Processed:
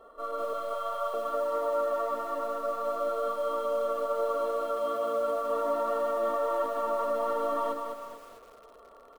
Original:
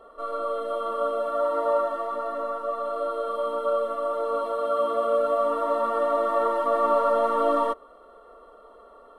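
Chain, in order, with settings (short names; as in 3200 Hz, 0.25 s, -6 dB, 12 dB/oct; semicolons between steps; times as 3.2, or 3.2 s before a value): 0.53–1.14 Chebyshev band-stop 170–600 Hz, order 3; limiter -20 dBFS, peak gain reduction 8 dB; short-mantissa float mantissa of 4-bit; echo 0.451 s -15 dB; lo-fi delay 0.204 s, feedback 35%, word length 8-bit, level -5 dB; gain -3.5 dB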